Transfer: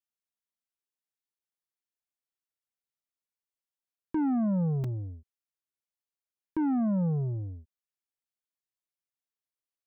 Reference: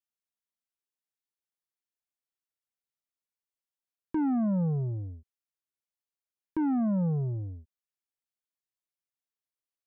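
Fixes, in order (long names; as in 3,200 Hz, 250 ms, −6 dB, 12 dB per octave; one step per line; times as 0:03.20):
repair the gap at 0:01.39/0:04.84, 3.7 ms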